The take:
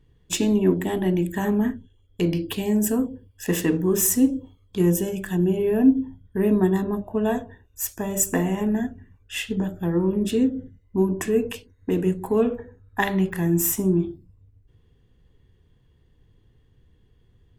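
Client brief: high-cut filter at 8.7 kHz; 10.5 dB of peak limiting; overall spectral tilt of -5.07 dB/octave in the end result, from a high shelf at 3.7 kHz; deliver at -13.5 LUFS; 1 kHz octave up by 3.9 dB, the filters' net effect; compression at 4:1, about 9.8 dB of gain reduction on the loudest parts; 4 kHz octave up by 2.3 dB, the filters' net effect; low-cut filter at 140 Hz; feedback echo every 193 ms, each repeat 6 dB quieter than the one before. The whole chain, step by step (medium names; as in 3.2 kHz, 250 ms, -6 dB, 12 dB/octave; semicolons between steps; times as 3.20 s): high-pass 140 Hz; low-pass 8.7 kHz; peaking EQ 1 kHz +5 dB; treble shelf 3.7 kHz -4 dB; peaking EQ 4 kHz +5.5 dB; compression 4:1, threshold -24 dBFS; peak limiter -22.5 dBFS; feedback delay 193 ms, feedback 50%, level -6 dB; trim +17.5 dB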